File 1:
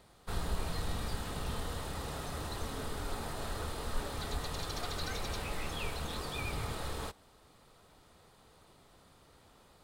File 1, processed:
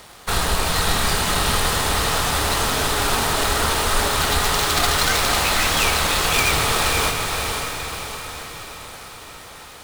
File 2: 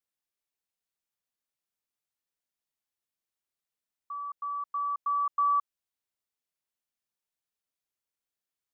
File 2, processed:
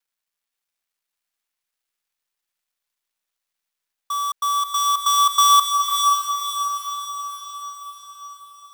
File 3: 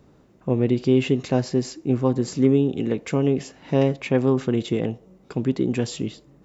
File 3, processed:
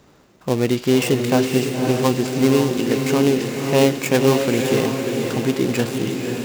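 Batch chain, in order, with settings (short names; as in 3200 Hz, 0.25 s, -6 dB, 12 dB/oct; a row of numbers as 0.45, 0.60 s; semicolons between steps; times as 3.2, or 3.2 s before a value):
switching dead time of 0.12 ms; tilt shelf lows -6 dB, about 660 Hz; diffused feedback echo 0.537 s, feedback 54%, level -4 dB; match loudness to -19 LUFS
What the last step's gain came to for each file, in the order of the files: +17.0, +10.0, +5.0 dB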